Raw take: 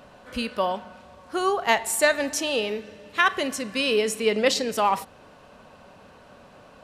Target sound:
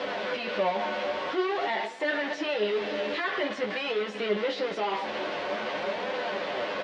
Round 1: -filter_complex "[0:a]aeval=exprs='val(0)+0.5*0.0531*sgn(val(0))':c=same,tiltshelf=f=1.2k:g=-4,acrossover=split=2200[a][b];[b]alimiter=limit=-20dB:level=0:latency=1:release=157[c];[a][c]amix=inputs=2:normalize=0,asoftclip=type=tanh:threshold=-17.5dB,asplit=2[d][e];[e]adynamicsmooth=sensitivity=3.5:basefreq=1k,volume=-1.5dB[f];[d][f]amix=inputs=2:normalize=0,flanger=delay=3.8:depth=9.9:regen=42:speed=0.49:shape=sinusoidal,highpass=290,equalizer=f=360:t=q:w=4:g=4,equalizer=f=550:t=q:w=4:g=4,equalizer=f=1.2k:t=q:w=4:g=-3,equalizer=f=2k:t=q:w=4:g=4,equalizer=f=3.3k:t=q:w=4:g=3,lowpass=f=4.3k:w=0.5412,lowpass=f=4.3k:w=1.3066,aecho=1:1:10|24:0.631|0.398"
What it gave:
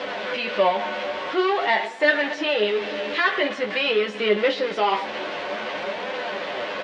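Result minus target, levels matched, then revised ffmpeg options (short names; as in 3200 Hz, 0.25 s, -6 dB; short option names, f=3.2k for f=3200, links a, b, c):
soft clip: distortion -8 dB
-filter_complex "[0:a]aeval=exprs='val(0)+0.5*0.0531*sgn(val(0))':c=same,tiltshelf=f=1.2k:g=-4,acrossover=split=2200[a][b];[b]alimiter=limit=-20dB:level=0:latency=1:release=157[c];[a][c]amix=inputs=2:normalize=0,asoftclip=type=tanh:threshold=-29.5dB,asplit=2[d][e];[e]adynamicsmooth=sensitivity=3.5:basefreq=1k,volume=-1.5dB[f];[d][f]amix=inputs=2:normalize=0,flanger=delay=3.8:depth=9.9:regen=42:speed=0.49:shape=sinusoidal,highpass=290,equalizer=f=360:t=q:w=4:g=4,equalizer=f=550:t=q:w=4:g=4,equalizer=f=1.2k:t=q:w=4:g=-3,equalizer=f=2k:t=q:w=4:g=4,equalizer=f=3.3k:t=q:w=4:g=3,lowpass=f=4.3k:w=0.5412,lowpass=f=4.3k:w=1.3066,aecho=1:1:10|24:0.631|0.398"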